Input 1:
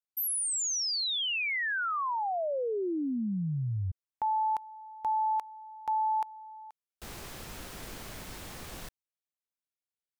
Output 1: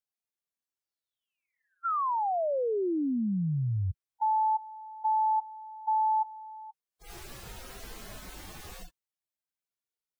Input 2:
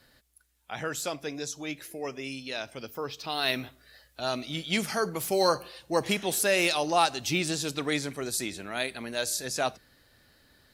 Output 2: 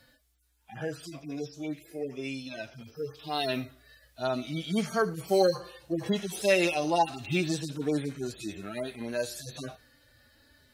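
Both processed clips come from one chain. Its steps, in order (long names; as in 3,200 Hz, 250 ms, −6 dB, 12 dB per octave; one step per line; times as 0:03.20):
harmonic-percussive split with one part muted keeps harmonic
level +2.5 dB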